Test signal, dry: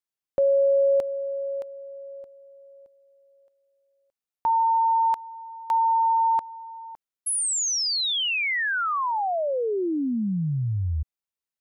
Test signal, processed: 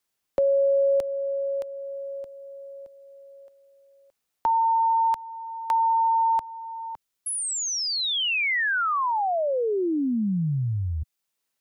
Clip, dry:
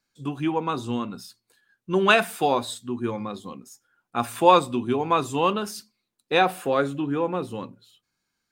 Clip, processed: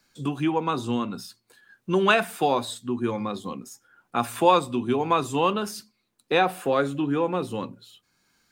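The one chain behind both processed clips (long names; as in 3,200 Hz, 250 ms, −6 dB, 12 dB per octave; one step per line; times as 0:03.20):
multiband upward and downward compressor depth 40%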